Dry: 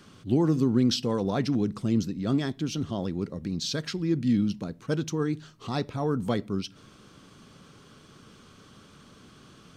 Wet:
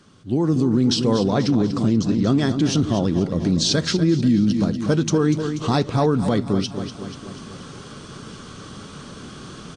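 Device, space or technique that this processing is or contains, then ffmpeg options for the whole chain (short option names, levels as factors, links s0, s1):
low-bitrate web radio: -filter_complex "[0:a]asettb=1/sr,asplit=3[s0][s1][s2];[s0]atrim=end=1.284[s3];[s1]atrim=start=1.28:end=2.39,asetpts=PTS-STARTPTS,afade=t=in:d=0.004:c=qsin,afade=t=out:st=1.106:d=0.004:c=qsin,lowpass=f=8000:w=0.5412,lowpass=f=8000:w=1.3066[s4];[s2]atrim=start=2.386[s5];[s3][s4]acrossfade=d=0.004:c1=hsin:c2=qsin[s6];[s6][s5]acrossfade=d=0.004:c1=qsin:c2=hsin,equalizer=f=2400:w=1.6:g=-3.5,aecho=1:1:242|484|726|968|1210:0.266|0.136|0.0692|0.0353|0.018,dynaudnorm=f=250:g=5:m=5.62,alimiter=limit=0.335:level=0:latency=1:release=138" -ar 22050 -c:a aac -b:a 48k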